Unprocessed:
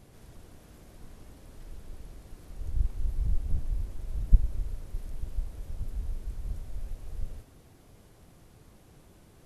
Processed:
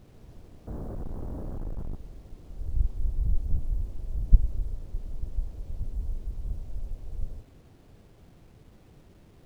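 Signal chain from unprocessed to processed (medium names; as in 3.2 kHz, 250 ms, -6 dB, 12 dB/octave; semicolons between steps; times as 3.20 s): 0.67–1.95 s: waveshaping leveller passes 5; Gaussian low-pass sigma 8.1 samples; bit crusher 11-bit; trim +2 dB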